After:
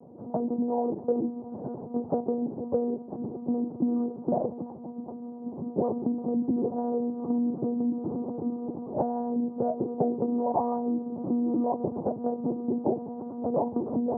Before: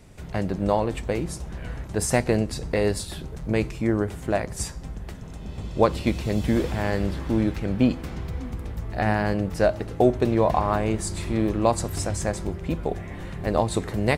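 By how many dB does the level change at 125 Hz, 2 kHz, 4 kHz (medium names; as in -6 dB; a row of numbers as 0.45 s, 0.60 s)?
-14.5 dB, under -35 dB, under -40 dB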